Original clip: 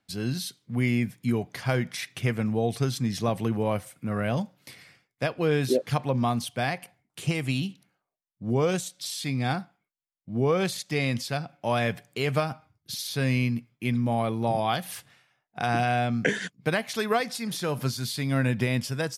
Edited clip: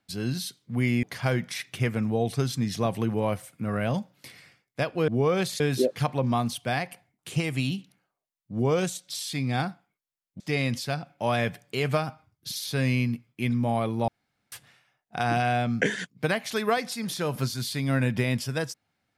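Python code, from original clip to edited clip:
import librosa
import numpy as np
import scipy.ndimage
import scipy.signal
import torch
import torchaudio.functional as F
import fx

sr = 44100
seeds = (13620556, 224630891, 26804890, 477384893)

y = fx.edit(x, sr, fx.cut(start_s=1.03, length_s=0.43),
    fx.move(start_s=10.31, length_s=0.52, to_s=5.51),
    fx.room_tone_fill(start_s=14.51, length_s=0.44), tone=tone)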